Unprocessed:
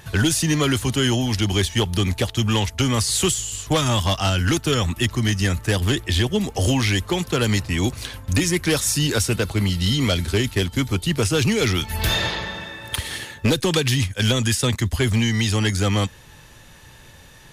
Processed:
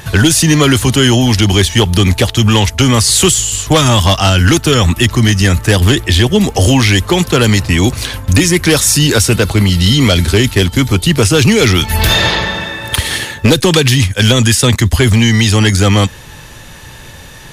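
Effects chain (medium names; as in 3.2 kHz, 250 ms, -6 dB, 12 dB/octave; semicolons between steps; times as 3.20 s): loudness maximiser +14 dB; trim -1 dB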